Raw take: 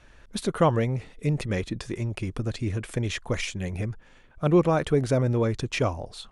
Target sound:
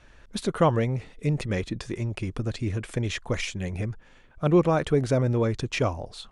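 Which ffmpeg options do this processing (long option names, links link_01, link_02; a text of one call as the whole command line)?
ffmpeg -i in.wav -af "lowpass=10000" out.wav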